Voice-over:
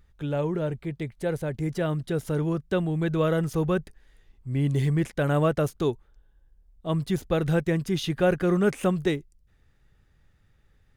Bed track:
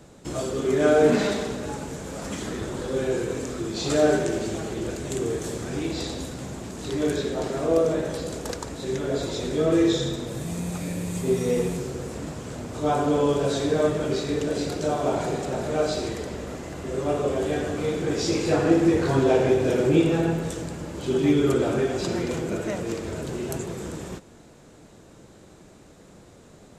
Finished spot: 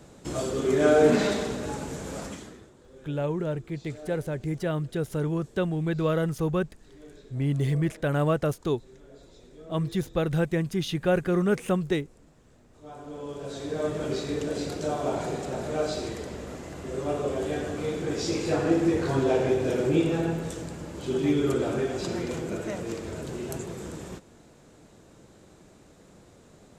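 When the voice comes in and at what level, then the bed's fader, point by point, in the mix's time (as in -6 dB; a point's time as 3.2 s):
2.85 s, -1.5 dB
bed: 2.19 s -1 dB
2.75 s -24.5 dB
12.7 s -24.5 dB
14.04 s -4 dB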